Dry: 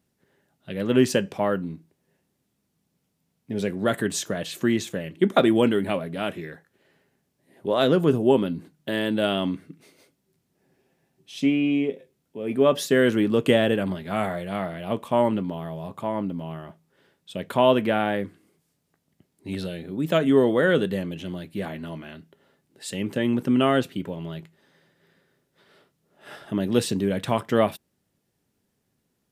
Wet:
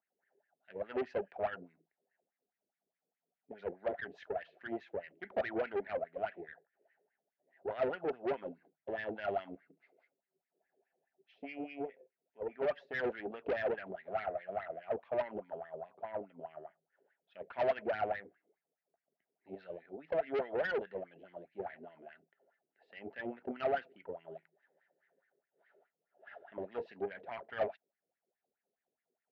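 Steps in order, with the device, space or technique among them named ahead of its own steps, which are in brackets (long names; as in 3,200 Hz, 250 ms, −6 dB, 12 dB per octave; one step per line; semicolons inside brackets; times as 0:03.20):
wah-wah guitar rig (LFO wah 4.8 Hz 390–2,000 Hz, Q 5.4; tube saturation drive 30 dB, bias 0.55; loudspeaker in its box 85–4,000 Hz, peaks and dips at 130 Hz −5 dB, 310 Hz −3 dB, 700 Hz +8 dB, 1,100 Hz −10 dB, 3,500 Hz −6 dB)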